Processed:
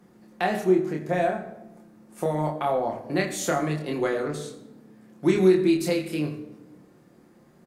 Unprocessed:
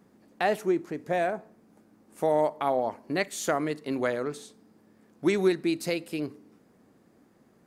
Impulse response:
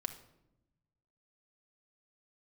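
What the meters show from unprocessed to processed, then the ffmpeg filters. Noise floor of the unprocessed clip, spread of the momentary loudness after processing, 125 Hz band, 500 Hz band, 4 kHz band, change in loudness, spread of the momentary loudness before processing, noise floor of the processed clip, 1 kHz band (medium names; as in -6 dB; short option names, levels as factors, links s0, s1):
-62 dBFS, 13 LU, +9.0 dB, +3.0 dB, +2.0 dB, +3.5 dB, 10 LU, -56 dBFS, +1.5 dB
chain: -filter_complex "[0:a]acrossover=split=290[s0][s1];[s1]acompressor=threshold=0.0224:ratio=1.5[s2];[s0][s2]amix=inputs=2:normalize=0,asplit=2[s3][s4];[s4]adelay=27,volume=0.708[s5];[s3][s5]amix=inputs=2:normalize=0[s6];[1:a]atrim=start_sample=2205,asetrate=35721,aresample=44100[s7];[s6][s7]afir=irnorm=-1:irlink=0,volume=1.33"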